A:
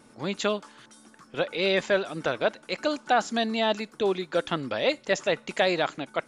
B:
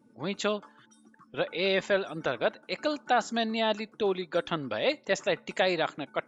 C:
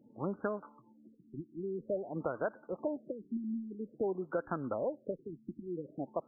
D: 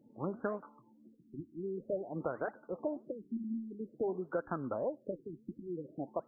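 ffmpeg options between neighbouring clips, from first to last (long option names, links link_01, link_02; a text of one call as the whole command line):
ffmpeg -i in.wav -af "afftdn=noise_reduction=18:noise_floor=-49,volume=-2.5dB" out.wav
ffmpeg -i in.wav -af "acompressor=threshold=-30dB:ratio=6,afftfilt=real='re*lt(b*sr/1024,360*pow(1700/360,0.5+0.5*sin(2*PI*0.5*pts/sr)))':imag='im*lt(b*sr/1024,360*pow(1700/360,0.5+0.5*sin(2*PI*0.5*pts/sr)))':win_size=1024:overlap=0.75" out.wav
ffmpeg -i in.wav -af "flanger=delay=1.7:depth=5.9:regen=-85:speed=1.6:shape=triangular,volume=3.5dB" out.wav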